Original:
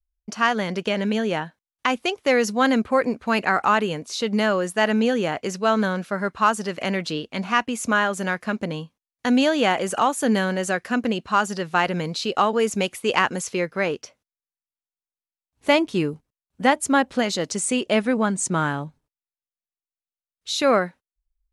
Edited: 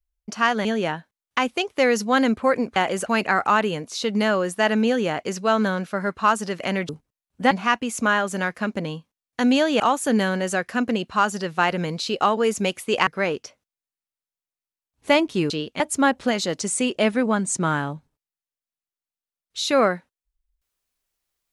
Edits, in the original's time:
0.65–1.13 s: delete
7.07–7.37 s: swap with 16.09–16.71 s
9.66–9.96 s: move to 3.24 s
13.23–13.66 s: delete

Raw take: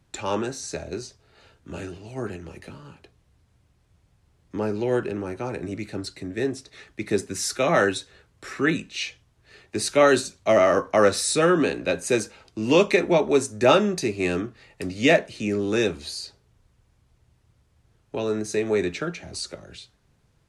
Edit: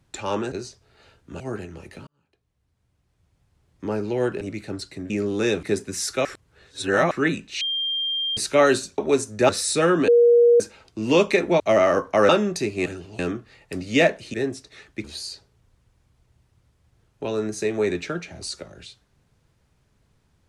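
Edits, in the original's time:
0.52–0.90 s: delete
1.78–2.11 s: move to 14.28 s
2.78–4.61 s: fade in
5.12–5.66 s: delete
6.35–7.05 s: swap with 15.43–15.96 s
7.67–8.53 s: reverse
9.03–9.79 s: bleep 3.19 kHz -22.5 dBFS
10.40–11.09 s: swap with 13.20–13.71 s
11.68–12.20 s: bleep 475 Hz -11 dBFS

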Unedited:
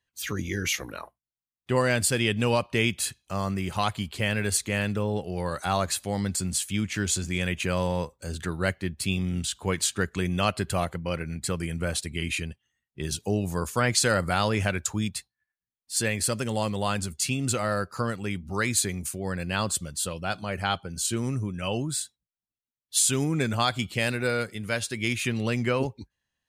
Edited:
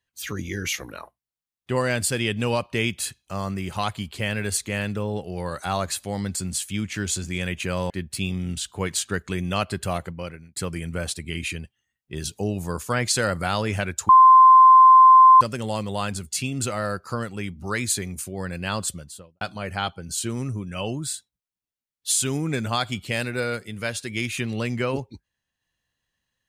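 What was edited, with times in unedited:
7.90–8.77 s: delete
10.94–11.43 s: fade out linear
14.96–16.28 s: bleep 1.04 kHz -7.5 dBFS
19.74–20.28 s: studio fade out

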